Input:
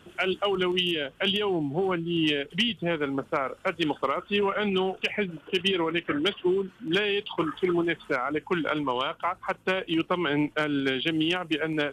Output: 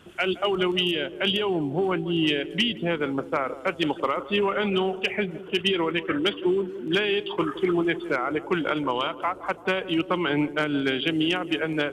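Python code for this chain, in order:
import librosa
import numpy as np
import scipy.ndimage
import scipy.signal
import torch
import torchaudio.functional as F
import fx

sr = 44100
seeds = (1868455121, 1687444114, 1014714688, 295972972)

y = fx.echo_banded(x, sr, ms=167, feedback_pct=72, hz=400.0, wet_db=-13)
y = F.gain(torch.from_numpy(y), 1.5).numpy()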